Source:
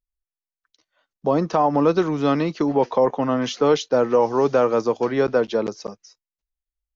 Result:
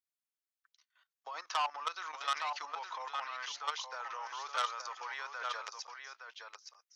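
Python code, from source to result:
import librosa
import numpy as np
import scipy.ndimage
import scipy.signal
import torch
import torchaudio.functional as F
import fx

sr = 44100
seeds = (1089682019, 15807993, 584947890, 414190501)

p1 = scipy.signal.sosfilt(scipy.signal.butter(4, 1100.0, 'highpass', fs=sr, output='sos'), x)
p2 = fx.level_steps(p1, sr, step_db=14)
p3 = p2 + fx.echo_single(p2, sr, ms=867, db=-7.0, dry=0)
y = fx.transformer_sat(p3, sr, knee_hz=2900.0)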